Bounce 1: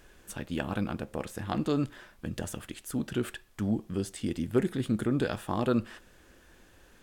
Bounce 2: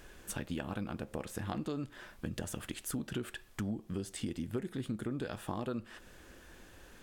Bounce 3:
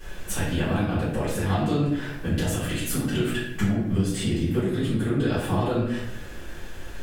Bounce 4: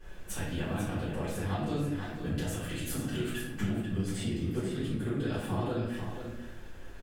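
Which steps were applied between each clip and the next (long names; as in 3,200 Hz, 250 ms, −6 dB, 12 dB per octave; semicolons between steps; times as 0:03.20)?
downward compressor 6 to 1, threshold −37 dBFS, peak gain reduction 16.5 dB; level +2.5 dB
convolution reverb RT60 0.85 s, pre-delay 3 ms, DRR −13.5 dB
single-tap delay 492 ms −8 dB; one half of a high-frequency compander decoder only; level −9 dB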